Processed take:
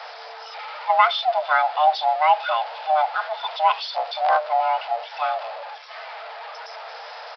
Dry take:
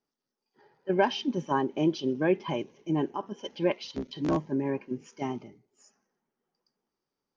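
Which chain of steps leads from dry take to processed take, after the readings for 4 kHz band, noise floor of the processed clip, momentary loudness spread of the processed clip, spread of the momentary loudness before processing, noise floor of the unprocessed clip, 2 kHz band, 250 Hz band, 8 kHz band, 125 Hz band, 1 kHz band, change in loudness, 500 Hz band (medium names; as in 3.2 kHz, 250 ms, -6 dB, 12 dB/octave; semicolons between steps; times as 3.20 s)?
+11.0 dB, -39 dBFS, 18 LU, 11 LU, under -85 dBFS, +12.0 dB, under -40 dB, no reading, under -40 dB, +17.0 dB, +8.5 dB, +4.0 dB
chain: jump at every zero crossing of -36 dBFS; frequency shift +450 Hz; resampled via 11.025 kHz; trim +7 dB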